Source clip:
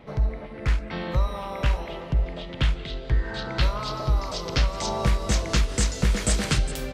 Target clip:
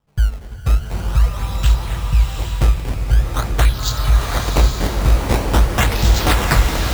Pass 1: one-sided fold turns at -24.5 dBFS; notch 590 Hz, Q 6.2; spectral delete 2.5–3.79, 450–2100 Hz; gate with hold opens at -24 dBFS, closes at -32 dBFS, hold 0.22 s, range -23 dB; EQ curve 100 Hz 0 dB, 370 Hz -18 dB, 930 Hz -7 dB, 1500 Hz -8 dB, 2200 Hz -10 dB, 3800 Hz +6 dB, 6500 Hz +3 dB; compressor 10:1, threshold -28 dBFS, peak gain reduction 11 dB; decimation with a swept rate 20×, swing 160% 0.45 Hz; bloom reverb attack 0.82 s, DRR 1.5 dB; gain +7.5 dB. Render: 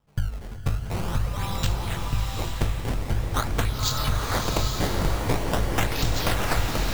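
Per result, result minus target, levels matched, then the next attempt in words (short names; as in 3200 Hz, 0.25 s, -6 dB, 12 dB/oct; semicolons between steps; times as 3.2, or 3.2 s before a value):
one-sided fold: distortion +36 dB; compressor: peak gain reduction +11 dB
one-sided fold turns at -13 dBFS; notch 590 Hz, Q 6.2; spectral delete 2.5–3.79, 450–2100 Hz; gate with hold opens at -24 dBFS, closes at -32 dBFS, hold 0.22 s, range -23 dB; EQ curve 100 Hz 0 dB, 370 Hz -18 dB, 930 Hz -7 dB, 1500 Hz -8 dB, 2200 Hz -10 dB, 3800 Hz +6 dB, 6500 Hz +3 dB; compressor 10:1, threshold -28 dBFS, peak gain reduction 12 dB; decimation with a swept rate 20×, swing 160% 0.45 Hz; bloom reverb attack 0.82 s, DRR 1.5 dB; gain +7.5 dB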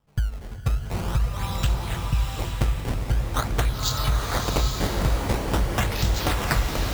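compressor: peak gain reduction +12 dB
one-sided fold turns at -13 dBFS; notch 590 Hz, Q 6.2; spectral delete 2.5–3.79, 450–2100 Hz; gate with hold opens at -24 dBFS, closes at -32 dBFS, hold 0.22 s, range -23 dB; EQ curve 100 Hz 0 dB, 370 Hz -18 dB, 930 Hz -7 dB, 1500 Hz -8 dB, 2200 Hz -10 dB, 3800 Hz +6 dB, 6500 Hz +3 dB; decimation with a swept rate 20×, swing 160% 0.45 Hz; bloom reverb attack 0.82 s, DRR 1.5 dB; gain +7.5 dB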